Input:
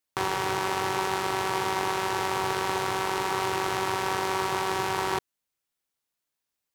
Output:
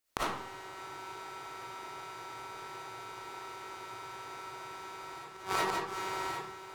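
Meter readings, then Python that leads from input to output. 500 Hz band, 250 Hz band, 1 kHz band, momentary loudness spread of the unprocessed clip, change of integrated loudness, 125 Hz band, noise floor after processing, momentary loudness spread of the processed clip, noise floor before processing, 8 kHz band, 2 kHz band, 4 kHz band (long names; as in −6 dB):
−13.0 dB, −12.5 dB, −11.0 dB, 1 LU, −12.0 dB, −14.5 dB, −48 dBFS, 11 LU, −85 dBFS, −11.5 dB, −11.0 dB, −11.5 dB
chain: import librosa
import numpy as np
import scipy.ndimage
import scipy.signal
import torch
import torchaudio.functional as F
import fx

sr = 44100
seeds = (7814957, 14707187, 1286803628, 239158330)

y = fx.echo_feedback(x, sr, ms=564, feedback_pct=27, wet_db=-5)
y = fx.gate_flip(y, sr, shuts_db=-18.0, range_db=-26)
y = fx.rev_freeverb(y, sr, rt60_s=0.65, hf_ratio=0.7, predelay_ms=15, drr_db=-8.0)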